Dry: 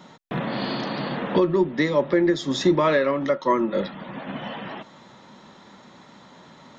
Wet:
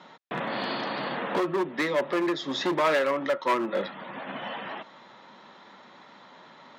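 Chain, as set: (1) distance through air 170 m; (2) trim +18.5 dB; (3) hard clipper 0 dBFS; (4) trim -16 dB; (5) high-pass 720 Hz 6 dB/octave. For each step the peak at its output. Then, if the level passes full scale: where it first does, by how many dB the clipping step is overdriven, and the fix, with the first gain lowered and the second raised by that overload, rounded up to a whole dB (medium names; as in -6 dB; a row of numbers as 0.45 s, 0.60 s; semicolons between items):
-9.5 dBFS, +9.0 dBFS, 0.0 dBFS, -16.0 dBFS, -13.0 dBFS; step 2, 9.0 dB; step 2 +9.5 dB, step 4 -7 dB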